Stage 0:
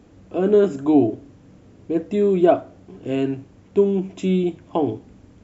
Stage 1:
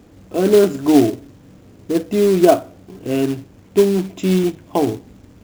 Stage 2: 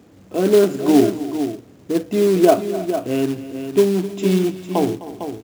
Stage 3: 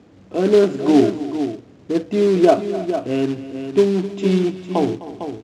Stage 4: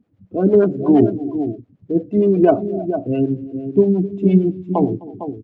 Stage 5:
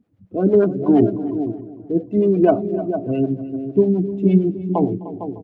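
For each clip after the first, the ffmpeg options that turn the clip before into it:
-af "acrusher=bits=4:mode=log:mix=0:aa=0.000001,volume=3.5dB"
-filter_complex "[0:a]highpass=100,asplit=2[a][b];[b]aecho=0:1:257|313|454:0.15|0.106|0.335[c];[a][c]amix=inputs=2:normalize=0,volume=-1.5dB"
-af "lowpass=5.3k"
-filter_complex "[0:a]acrossover=split=430[a][b];[a]aeval=exprs='val(0)*(1-0.7/2+0.7/2*cos(2*PI*8.7*n/s))':c=same[c];[b]aeval=exprs='val(0)*(1-0.7/2-0.7/2*cos(2*PI*8.7*n/s))':c=same[d];[c][d]amix=inputs=2:normalize=0,bass=f=250:g=7,treble=f=4k:g=-8,afftdn=nr=21:nf=-29,volume=2.5dB"
-filter_complex "[0:a]asplit=2[a][b];[b]adelay=302,lowpass=f=2.2k:p=1,volume=-15dB,asplit=2[c][d];[d]adelay=302,lowpass=f=2.2k:p=1,volume=0.43,asplit=2[e][f];[f]adelay=302,lowpass=f=2.2k:p=1,volume=0.43,asplit=2[g][h];[h]adelay=302,lowpass=f=2.2k:p=1,volume=0.43[i];[a][c][e][g][i]amix=inputs=5:normalize=0,volume=-1.5dB"

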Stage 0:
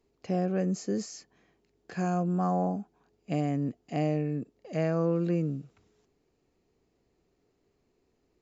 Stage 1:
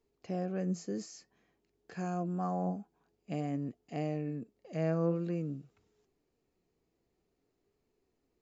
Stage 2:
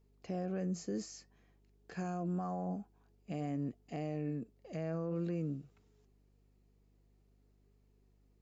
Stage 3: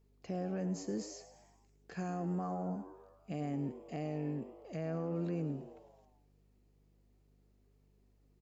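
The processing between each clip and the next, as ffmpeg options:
-af "flanger=delay=2.2:depth=4:regen=82:speed=0.51:shape=sinusoidal,volume=-2dB"
-af "alimiter=level_in=5dB:limit=-24dB:level=0:latency=1:release=46,volume=-5dB,aeval=exprs='val(0)+0.000398*(sin(2*PI*50*n/s)+sin(2*PI*2*50*n/s)/2+sin(2*PI*3*50*n/s)/3+sin(2*PI*4*50*n/s)/4+sin(2*PI*5*50*n/s)/5)':c=same"
-filter_complex "[0:a]asplit=7[a][b][c][d][e][f][g];[b]adelay=108,afreqshift=98,volume=-14dB[h];[c]adelay=216,afreqshift=196,volume=-19.2dB[i];[d]adelay=324,afreqshift=294,volume=-24.4dB[j];[e]adelay=432,afreqshift=392,volume=-29.6dB[k];[f]adelay=540,afreqshift=490,volume=-34.8dB[l];[g]adelay=648,afreqshift=588,volume=-40dB[m];[a][h][i][j][k][l][m]amix=inputs=7:normalize=0"

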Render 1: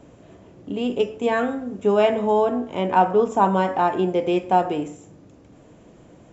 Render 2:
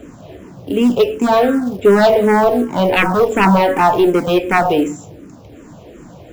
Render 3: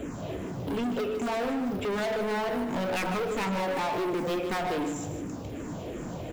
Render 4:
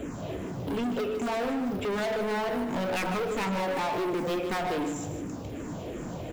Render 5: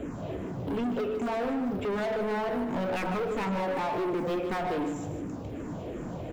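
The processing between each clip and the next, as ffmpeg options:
-filter_complex "[0:a]aeval=exprs='0.668*sin(PI/2*3.16*val(0)/0.668)':c=same,acrusher=bits=7:mode=log:mix=0:aa=0.000001,asplit=2[a][b];[b]afreqshift=-2.7[c];[a][c]amix=inputs=2:normalize=1"
-af "acompressor=threshold=-25dB:ratio=2.5,asoftclip=type=tanh:threshold=-30dB,aecho=1:1:153|306|459|612:0.335|0.137|0.0563|0.0231,volume=2dB"
-af anull
-af "highshelf=f=3k:g=-10"

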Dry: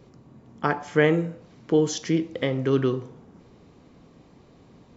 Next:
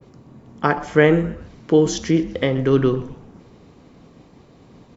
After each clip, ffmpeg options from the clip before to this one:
-filter_complex "[0:a]agate=range=-33dB:threshold=-51dB:ratio=3:detection=peak,asplit=4[a][b][c][d];[b]adelay=127,afreqshift=-120,volume=-17.5dB[e];[c]adelay=254,afreqshift=-240,volume=-25.7dB[f];[d]adelay=381,afreqshift=-360,volume=-33.9dB[g];[a][e][f][g]amix=inputs=4:normalize=0,adynamicequalizer=threshold=0.00891:dfrequency=2300:dqfactor=0.7:tfrequency=2300:tqfactor=0.7:attack=5:release=100:ratio=0.375:range=2.5:mode=cutabove:tftype=highshelf,volume=5.5dB"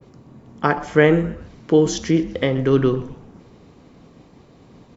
-af anull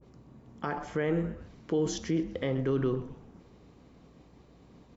-af "alimiter=limit=-10.5dB:level=0:latency=1:release=38,aeval=exprs='val(0)+0.00224*(sin(2*PI*60*n/s)+sin(2*PI*2*60*n/s)/2+sin(2*PI*3*60*n/s)/3+sin(2*PI*4*60*n/s)/4+sin(2*PI*5*60*n/s)/5)':c=same,adynamicequalizer=threshold=0.0141:dfrequency=1600:dqfactor=0.7:tfrequency=1600:tqfactor=0.7:attack=5:release=100:ratio=0.375:range=2:mode=cutabove:tftype=highshelf,volume=-9dB"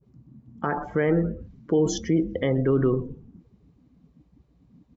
-af "afftdn=nr=20:nf=-42,volume=7dB"

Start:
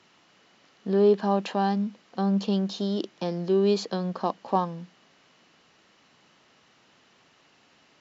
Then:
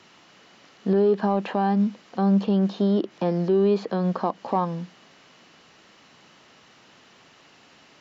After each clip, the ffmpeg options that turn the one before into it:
-filter_complex "[0:a]acontrast=77,alimiter=limit=-13dB:level=0:latency=1:release=146,acrossover=split=2500[a][b];[b]acompressor=threshold=-51dB:ratio=4:attack=1:release=60[c];[a][c]amix=inputs=2:normalize=0"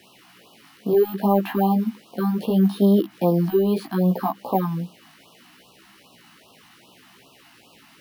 -af "flanger=delay=15:depth=3.7:speed=0.69,acrusher=samples=3:mix=1:aa=0.000001,afftfilt=real='re*(1-between(b*sr/1024,430*pow(1900/430,0.5+0.5*sin(2*PI*2.5*pts/sr))/1.41,430*pow(1900/430,0.5+0.5*sin(2*PI*2.5*pts/sr))*1.41))':imag='im*(1-between(b*sr/1024,430*pow(1900/430,0.5+0.5*sin(2*PI*2.5*pts/sr))/1.41,430*pow(1900/430,0.5+0.5*sin(2*PI*2.5*pts/sr))*1.41))':win_size=1024:overlap=0.75,volume=5.5dB"

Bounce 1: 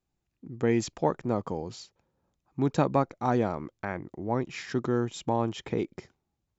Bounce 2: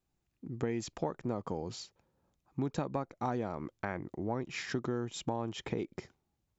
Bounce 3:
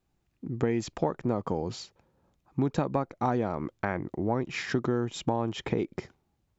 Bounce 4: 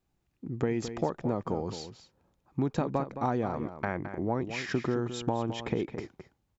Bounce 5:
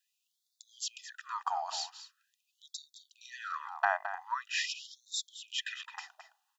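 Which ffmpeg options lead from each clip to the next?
-af "acompressor=threshold=-31dB:ratio=6"
-af "highshelf=f=5k:g=-7.5,volume=7dB"
-filter_complex "[0:a]asplit=2[a][b];[b]adelay=215.7,volume=-10dB,highshelf=f=4k:g=-4.85[c];[a][c]amix=inputs=2:normalize=0,volume=-2dB"
-af "asuperstop=centerf=2200:order=12:qfactor=5.5,afftfilt=real='re*gte(b*sr/1024,620*pow(3500/620,0.5+0.5*sin(2*PI*0.44*pts/sr)))':imag='im*gte(b*sr/1024,620*pow(3500/620,0.5+0.5*sin(2*PI*0.44*pts/sr)))':win_size=1024:overlap=0.75,volume=7dB"

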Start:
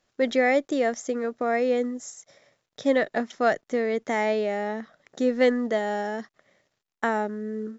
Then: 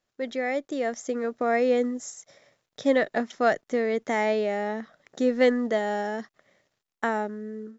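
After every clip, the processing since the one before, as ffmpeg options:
-af "dynaudnorm=f=380:g=5:m=11.5dB,volume=-8dB"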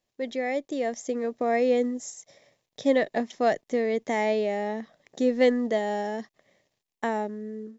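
-af "equalizer=f=1.4k:w=3.8:g=-13"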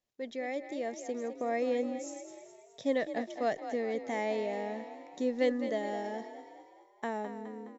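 -filter_complex "[0:a]asplit=7[a][b][c][d][e][f][g];[b]adelay=209,afreqshift=38,volume=-10.5dB[h];[c]adelay=418,afreqshift=76,volume=-16.2dB[i];[d]adelay=627,afreqshift=114,volume=-21.9dB[j];[e]adelay=836,afreqshift=152,volume=-27.5dB[k];[f]adelay=1045,afreqshift=190,volume=-33.2dB[l];[g]adelay=1254,afreqshift=228,volume=-38.9dB[m];[a][h][i][j][k][l][m]amix=inputs=7:normalize=0,volume=-8dB"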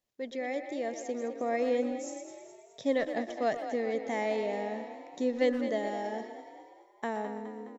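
-filter_complex "[0:a]asplit=2[a][b];[b]adelay=120,highpass=300,lowpass=3.4k,asoftclip=type=hard:threshold=-27dB,volume=-10dB[c];[a][c]amix=inputs=2:normalize=0,volume=1.5dB"

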